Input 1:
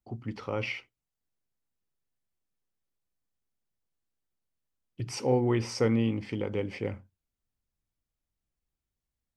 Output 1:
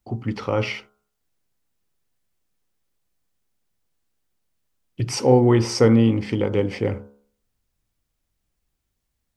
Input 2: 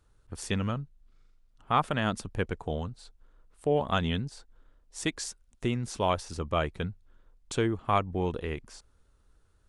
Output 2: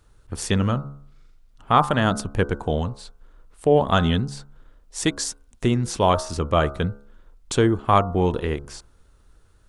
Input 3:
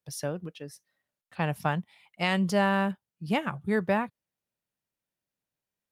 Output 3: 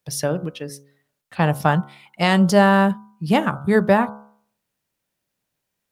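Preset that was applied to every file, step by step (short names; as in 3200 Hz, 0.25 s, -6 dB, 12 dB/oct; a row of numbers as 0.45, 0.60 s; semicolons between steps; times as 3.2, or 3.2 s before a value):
de-hum 70.27 Hz, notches 22; dynamic EQ 2400 Hz, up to -7 dB, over -49 dBFS, Q 2.3; normalise peaks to -3 dBFS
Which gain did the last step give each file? +10.5, +9.5, +11.0 dB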